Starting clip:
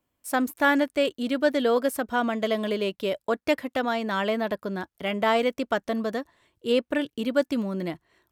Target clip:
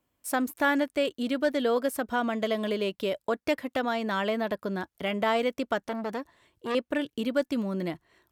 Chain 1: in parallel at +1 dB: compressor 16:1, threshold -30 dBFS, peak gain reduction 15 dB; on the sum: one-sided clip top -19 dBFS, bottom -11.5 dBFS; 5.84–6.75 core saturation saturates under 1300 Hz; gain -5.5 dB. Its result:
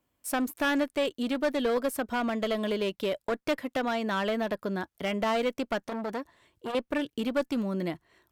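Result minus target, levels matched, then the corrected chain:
one-sided clip: distortion +16 dB
in parallel at +1 dB: compressor 16:1, threshold -30 dBFS, peak gain reduction 15 dB; on the sum: one-sided clip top -7.5 dBFS, bottom -11.5 dBFS; 5.84–6.75 core saturation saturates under 1300 Hz; gain -5.5 dB

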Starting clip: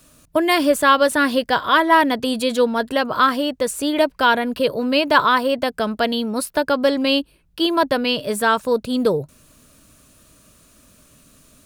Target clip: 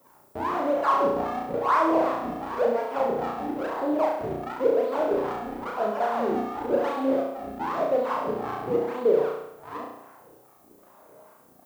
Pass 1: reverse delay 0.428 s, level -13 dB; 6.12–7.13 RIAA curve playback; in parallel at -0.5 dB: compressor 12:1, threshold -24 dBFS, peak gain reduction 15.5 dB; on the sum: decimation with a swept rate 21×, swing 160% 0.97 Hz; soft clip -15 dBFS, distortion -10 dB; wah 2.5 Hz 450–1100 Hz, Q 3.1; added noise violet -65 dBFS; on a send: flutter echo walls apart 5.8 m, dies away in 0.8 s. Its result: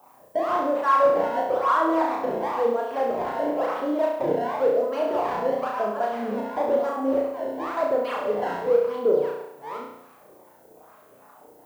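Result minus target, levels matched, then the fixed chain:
decimation with a swept rate: distortion -8 dB
reverse delay 0.428 s, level -13 dB; 6.12–7.13 RIAA curve playback; in parallel at -0.5 dB: compressor 12:1, threshold -24 dBFS, peak gain reduction 15.5 dB; on the sum: decimation with a swept rate 51×, swing 160% 0.97 Hz; soft clip -15 dBFS, distortion -10 dB; wah 2.5 Hz 450–1100 Hz, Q 3.1; added noise violet -65 dBFS; on a send: flutter echo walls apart 5.8 m, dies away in 0.8 s

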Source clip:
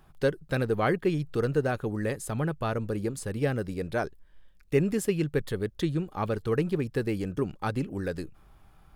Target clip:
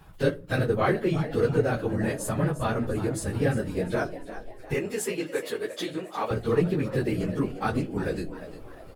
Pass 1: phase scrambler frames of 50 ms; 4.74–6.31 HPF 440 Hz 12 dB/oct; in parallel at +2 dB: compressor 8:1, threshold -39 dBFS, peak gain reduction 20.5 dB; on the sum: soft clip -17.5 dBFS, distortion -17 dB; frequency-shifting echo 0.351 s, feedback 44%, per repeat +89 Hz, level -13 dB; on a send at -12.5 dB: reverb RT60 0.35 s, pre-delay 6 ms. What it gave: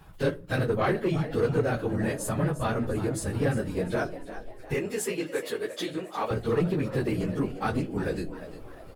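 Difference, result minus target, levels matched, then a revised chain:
soft clip: distortion +18 dB
phase scrambler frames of 50 ms; 4.74–6.31 HPF 440 Hz 12 dB/oct; in parallel at +2 dB: compressor 8:1, threshold -39 dBFS, peak gain reduction 20.5 dB; on the sum: soft clip -6 dBFS, distortion -36 dB; frequency-shifting echo 0.351 s, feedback 44%, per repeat +89 Hz, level -13 dB; on a send at -12.5 dB: reverb RT60 0.35 s, pre-delay 6 ms

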